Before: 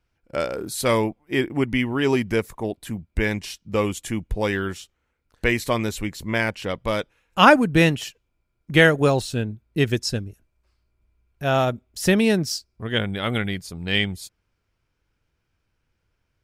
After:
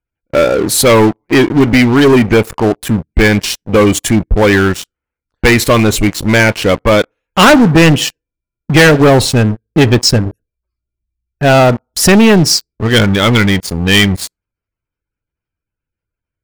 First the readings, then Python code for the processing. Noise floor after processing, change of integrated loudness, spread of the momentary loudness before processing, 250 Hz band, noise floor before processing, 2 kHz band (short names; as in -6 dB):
-84 dBFS, +12.5 dB, 14 LU, +13.5 dB, -74 dBFS, +11.0 dB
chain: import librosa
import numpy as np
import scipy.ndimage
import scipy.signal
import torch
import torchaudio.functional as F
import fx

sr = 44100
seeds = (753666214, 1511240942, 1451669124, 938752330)

y = fx.spec_gate(x, sr, threshold_db=-25, keep='strong')
y = fx.rev_fdn(y, sr, rt60_s=0.46, lf_ratio=0.8, hf_ratio=0.45, size_ms=20.0, drr_db=19.5)
y = fx.leveller(y, sr, passes=5)